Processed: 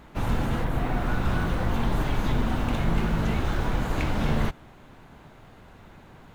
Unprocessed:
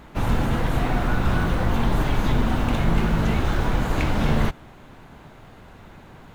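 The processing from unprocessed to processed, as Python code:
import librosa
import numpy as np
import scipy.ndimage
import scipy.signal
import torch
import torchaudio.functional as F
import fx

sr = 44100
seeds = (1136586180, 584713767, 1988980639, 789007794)

y = fx.peak_eq(x, sr, hz=5800.0, db=fx.line((0.63, -8.0), (1.06, -2.0)), octaves=2.3, at=(0.63, 1.06), fade=0.02)
y = y * 10.0 ** (-4.0 / 20.0)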